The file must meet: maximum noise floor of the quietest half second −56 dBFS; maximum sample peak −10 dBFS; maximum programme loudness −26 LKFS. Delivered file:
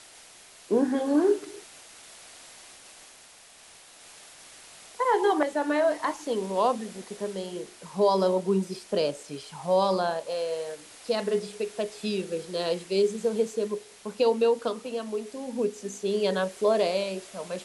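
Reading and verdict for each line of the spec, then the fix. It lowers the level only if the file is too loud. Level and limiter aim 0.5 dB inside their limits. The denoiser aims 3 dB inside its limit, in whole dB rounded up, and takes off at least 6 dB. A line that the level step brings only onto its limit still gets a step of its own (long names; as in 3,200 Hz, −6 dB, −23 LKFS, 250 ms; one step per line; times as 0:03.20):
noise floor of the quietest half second −52 dBFS: out of spec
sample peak −11.5 dBFS: in spec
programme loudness −27.5 LKFS: in spec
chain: broadband denoise 7 dB, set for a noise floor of −52 dBFS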